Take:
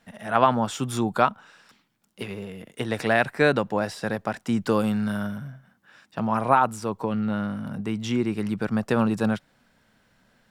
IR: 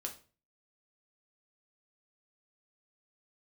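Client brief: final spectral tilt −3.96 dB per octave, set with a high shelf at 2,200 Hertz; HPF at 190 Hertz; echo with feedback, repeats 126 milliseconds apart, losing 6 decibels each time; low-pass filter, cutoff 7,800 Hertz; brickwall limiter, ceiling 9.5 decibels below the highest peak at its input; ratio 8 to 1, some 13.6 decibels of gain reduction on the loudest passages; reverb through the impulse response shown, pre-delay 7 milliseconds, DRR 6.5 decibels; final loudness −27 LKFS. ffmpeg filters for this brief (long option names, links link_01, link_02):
-filter_complex "[0:a]highpass=190,lowpass=7800,highshelf=frequency=2200:gain=8,acompressor=threshold=-26dB:ratio=8,alimiter=limit=-22dB:level=0:latency=1,aecho=1:1:126|252|378|504|630|756:0.501|0.251|0.125|0.0626|0.0313|0.0157,asplit=2[link_01][link_02];[1:a]atrim=start_sample=2205,adelay=7[link_03];[link_02][link_03]afir=irnorm=-1:irlink=0,volume=-5dB[link_04];[link_01][link_04]amix=inputs=2:normalize=0,volume=5.5dB"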